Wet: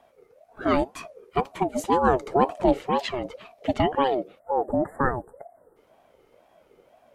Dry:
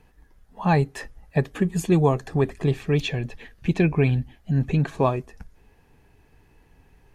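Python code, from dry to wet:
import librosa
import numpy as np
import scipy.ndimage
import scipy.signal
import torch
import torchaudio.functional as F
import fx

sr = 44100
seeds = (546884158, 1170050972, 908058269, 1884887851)

y = fx.low_shelf(x, sr, hz=210.0, db=8.5, at=(2.07, 2.82))
y = fx.spec_erase(y, sr, start_s=4.4, length_s=1.37, low_hz=1500.0, high_hz=7700.0)
y = fx.ring_lfo(y, sr, carrier_hz=560.0, swing_pct=25, hz=2.0)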